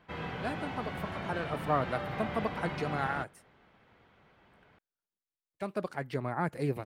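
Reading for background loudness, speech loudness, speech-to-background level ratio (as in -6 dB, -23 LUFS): -38.5 LUFS, -36.0 LUFS, 2.5 dB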